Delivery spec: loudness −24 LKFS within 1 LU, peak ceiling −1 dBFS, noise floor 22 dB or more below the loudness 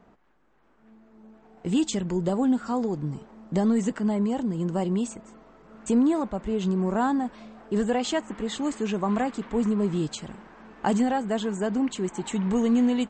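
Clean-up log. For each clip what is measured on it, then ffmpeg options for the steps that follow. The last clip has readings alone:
integrated loudness −26.5 LKFS; sample peak −12.5 dBFS; target loudness −24.0 LKFS
→ -af "volume=2.5dB"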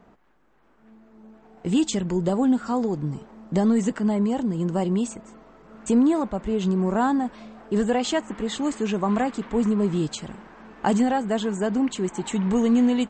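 integrated loudness −24.0 LKFS; sample peak −10.0 dBFS; background noise floor −58 dBFS

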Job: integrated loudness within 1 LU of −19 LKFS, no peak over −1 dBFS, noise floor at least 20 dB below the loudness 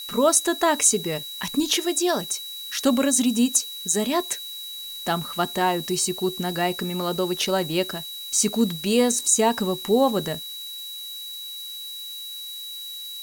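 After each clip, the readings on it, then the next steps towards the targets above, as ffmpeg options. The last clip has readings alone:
interfering tone 3,900 Hz; level of the tone −34 dBFS; background noise floor −36 dBFS; target noise floor −44 dBFS; integrated loudness −23.5 LKFS; sample peak −5.0 dBFS; target loudness −19.0 LKFS
→ -af "bandreject=frequency=3900:width=30"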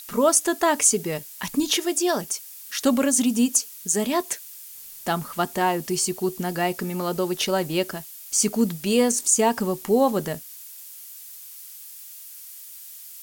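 interfering tone none found; background noise floor −42 dBFS; target noise floor −43 dBFS
→ -af "afftdn=noise_reduction=6:noise_floor=-42"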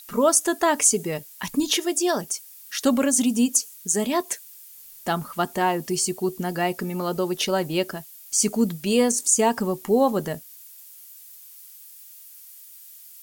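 background noise floor −46 dBFS; integrated loudness −23.0 LKFS; sample peak −5.5 dBFS; target loudness −19.0 LKFS
→ -af "volume=4dB"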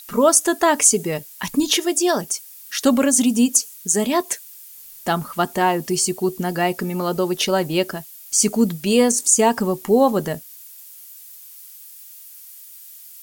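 integrated loudness −19.0 LKFS; sample peak −1.5 dBFS; background noise floor −42 dBFS

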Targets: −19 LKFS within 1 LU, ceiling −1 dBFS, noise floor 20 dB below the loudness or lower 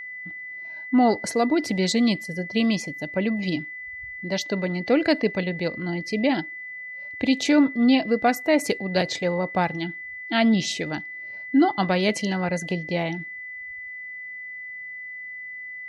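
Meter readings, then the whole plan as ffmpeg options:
interfering tone 2,000 Hz; level of the tone −34 dBFS; integrated loudness −24.5 LKFS; sample peak −7.5 dBFS; target loudness −19.0 LKFS
→ -af "bandreject=frequency=2000:width=30"
-af "volume=5.5dB"

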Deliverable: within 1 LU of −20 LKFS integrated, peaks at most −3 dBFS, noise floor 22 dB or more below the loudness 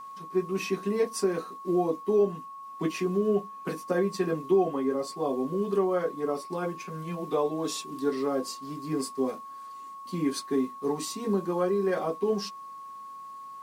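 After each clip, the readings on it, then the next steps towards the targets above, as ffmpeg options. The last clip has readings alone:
interfering tone 1,100 Hz; level of the tone −40 dBFS; integrated loudness −29.5 LKFS; sample peak −14.0 dBFS; target loudness −20.0 LKFS
→ -af "bandreject=frequency=1100:width=30"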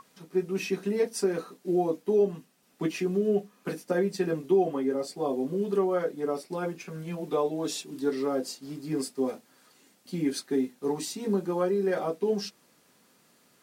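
interfering tone none found; integrated loudness −29.5 LKFS; sample peak −14.0 dBFS; target loudness −20.0 LKFS
→ -af "volume=9.5dB"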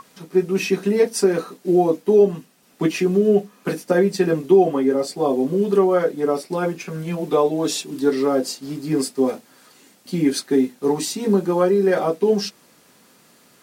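integrated loudness −20.0 LKFS; sample peak −4.5 dBFS; background noise floor −54 dBFS

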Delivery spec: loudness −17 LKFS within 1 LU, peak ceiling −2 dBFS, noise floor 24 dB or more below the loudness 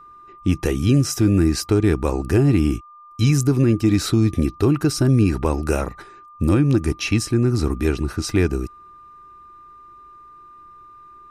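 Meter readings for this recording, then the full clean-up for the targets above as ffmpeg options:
interfering tone 1,200 Hz; level of the tone −42 dBFS; integrated loudness −19.5 LKFS; sample peak −6.5 dBFS; target loudness −17.0 LKFS
→ -af "bandreject=frequency=1200:width=30"
-af "volume=2.5dB"

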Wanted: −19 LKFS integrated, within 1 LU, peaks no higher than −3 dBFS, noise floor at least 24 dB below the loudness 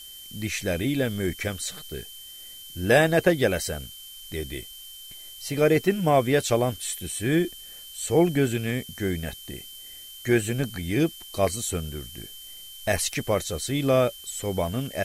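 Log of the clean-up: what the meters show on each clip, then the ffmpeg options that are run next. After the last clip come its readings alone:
interfering tone 3,100 Hz; level of the tone −43 dBFS; background noise floor −43 dBFS; target noise floor −50 dBFS; integrated loudness −25.5 LKFS; sample peak −6.0 dBFS; target loudness −19.0 LKFS
→ -af "bandreject=frequency=3100:width=30"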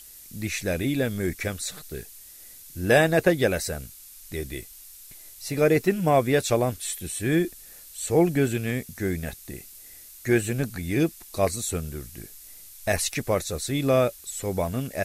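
interfering tone none found; background noise floor −47 dBFS; target noise floor −50 dBFS
→ -af "afftdn=noise_reduction=6:noise_floor=-47"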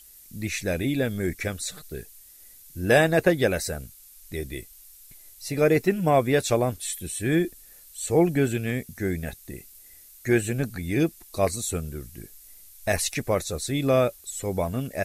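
background noise floor −50 dBFS; integrated loudness −25.5 LKFS; sample peak −6.5 dBFS; target loudness −19.0 LKFS
→ -af "volume=6.5dB,alimiter=limit=-3dB:level=0:latency=1"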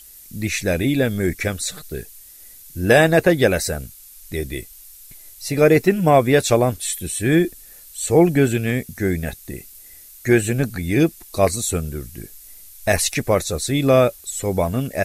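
integrated loudness −19.0 LKFS; sample peak −3.0 dBFS; background noise floor −44 dBFS

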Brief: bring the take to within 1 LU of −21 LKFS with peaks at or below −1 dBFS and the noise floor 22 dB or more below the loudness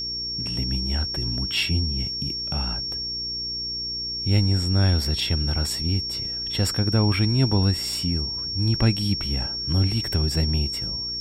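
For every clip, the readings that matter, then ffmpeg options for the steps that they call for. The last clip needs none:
mains hum 60 Hz; hum harmonics up to 420 Hz; level of the hum −41 dBFS; interfering tone 5,500 Hz; level of the tone −27 dBFS; integrated loudness −23.5 LKFS; sample peak −8.0 dBFS; target loudness −21.0 LKFS
→ -af "bandreject=frequency=60:width_type=h:width=4,bandreject=frequency=120:width_type=h:width=4,bandreject=frequency=180:width_type=h:width=4,bandreject=frequency=240:width_type=h:width=4,bandreject=frequency=300:width_type=h:width=4,bandreject=frequency=360:width_type=h:width=4,bandreject=frequency=420:width_type=h:width=4"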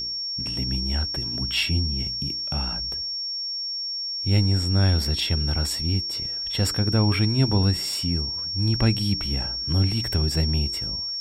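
mains hum none found; interfering tone 5,500 Hz; level of the tone −27 dBFS
→ -af "bandreject=frequency=5500:width=30"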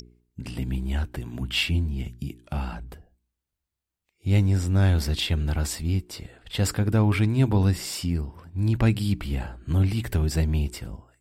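interfering tone none found; integrated loudness −25.5 LKFS; sample peak −9.5 dBFS; target loudness −21.0 LKFS
→ -af "volume=4.5dB"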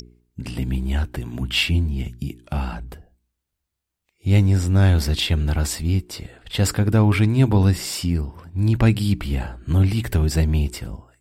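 integrated loudness −21.0 LKFS; sample peak −5.0 dBFS; background noise floor −80 dBFS

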